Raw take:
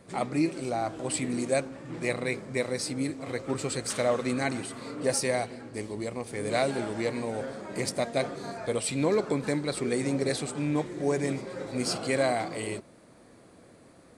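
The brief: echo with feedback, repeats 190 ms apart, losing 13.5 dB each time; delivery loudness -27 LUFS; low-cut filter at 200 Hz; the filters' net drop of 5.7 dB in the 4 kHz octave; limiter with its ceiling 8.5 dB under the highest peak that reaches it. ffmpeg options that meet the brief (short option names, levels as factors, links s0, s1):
-af "highpass=200,equalizer=f=4000:t=o:g=-7,alimiter=limit=0.0708:level=0:latency=1,aecho=1:1:190|380:0.211|0.0444,volume=2.24"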